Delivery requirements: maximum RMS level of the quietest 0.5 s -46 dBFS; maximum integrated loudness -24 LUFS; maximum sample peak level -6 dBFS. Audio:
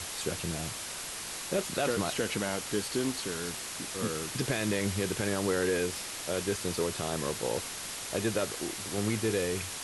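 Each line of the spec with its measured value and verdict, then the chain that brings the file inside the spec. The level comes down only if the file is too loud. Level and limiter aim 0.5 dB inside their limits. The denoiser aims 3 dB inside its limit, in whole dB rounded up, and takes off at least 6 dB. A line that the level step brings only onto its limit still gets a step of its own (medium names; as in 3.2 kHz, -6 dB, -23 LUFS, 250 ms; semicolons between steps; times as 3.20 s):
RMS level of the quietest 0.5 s -39 dBFS: fail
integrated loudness -32.0 LUFS: pass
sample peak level -17.0 dBFS: pass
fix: noise reduction 10 dB, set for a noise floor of -39 dBFS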